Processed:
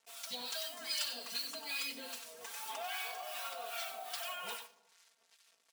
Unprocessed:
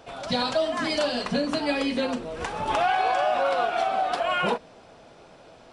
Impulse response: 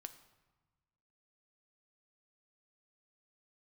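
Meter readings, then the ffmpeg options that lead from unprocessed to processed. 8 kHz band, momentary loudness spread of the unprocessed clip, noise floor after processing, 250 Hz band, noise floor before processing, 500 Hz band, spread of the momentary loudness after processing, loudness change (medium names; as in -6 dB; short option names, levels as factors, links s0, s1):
+0.5 dB, 6 LU, -74 dBFS, -29.0 dB, -51 dBFS, -23.5 dB, 8 LU, -14.5 dB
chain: -filter_complex "[0:a]acrusher=bits=6:mix=0:aa=0.5,asplit=2[s0][s1];[1:a]atrim=start_sample=2205,adelay=94[s2];[s1][s2]afir=irnorm=-1:irlink=0,volume=0.75[s3];[s0][s3]amix=inputs=2:normalize=0,acrossover=split=920[s4][s5];[s4]aeval=exprs='val(0)*(1-0.7/2+0.7/2*cos(2*PI*2.5*n/s))':c=same[s6];[s5]aeval=exprs='val(0)*(1-0.7/2-0.7/2*cos(2*PI*2.5*n/s))':c=same[s7];[s6][s7]amix=inputs=2:normalize=0,aderivative,aecho=1:1:4.4:0.98,volume=0.794"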